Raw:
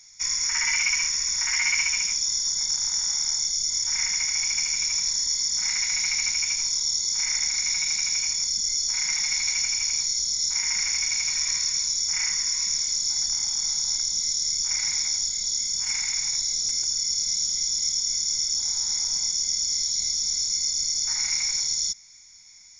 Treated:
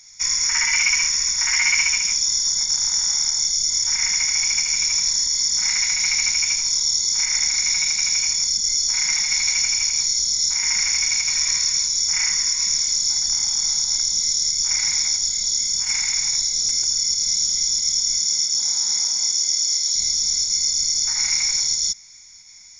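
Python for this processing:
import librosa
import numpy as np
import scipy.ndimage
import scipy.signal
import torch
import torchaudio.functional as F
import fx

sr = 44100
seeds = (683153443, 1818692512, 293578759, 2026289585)

p1 = fx.highpass(x, sr, hz=fx.line((18.19, 120.0), (19.94, 310.0)), slope=24, at=(18.19, 19.94), fade=0.02)
p2 = fx.volume_shaper(p1, sr, bpm=91, per_beat=1, depth_db=-6, release_ms=65.0, shape='slow start')
y = p1 + (p2 * librosa.db_to_amplitude(-2.0))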